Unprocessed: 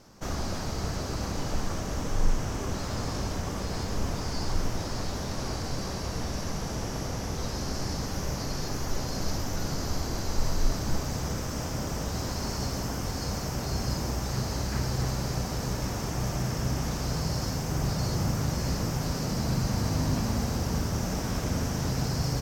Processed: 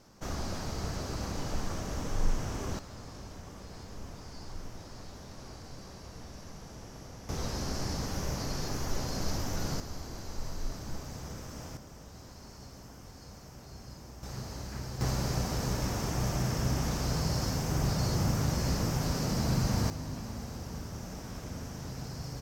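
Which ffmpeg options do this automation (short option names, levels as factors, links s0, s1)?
-af "asetnsamples=n=441:p=0,asendcmd='2.79 volume volume -14dB;7.29 volume volume -2.5dB;9.8 volume volume -10.5dB;11.77 volume volume -17.5dB;14.23 volume volume -10dB;15.01 volume volume -1dB;19.9 volume volume -11.5dB',volume=0.631"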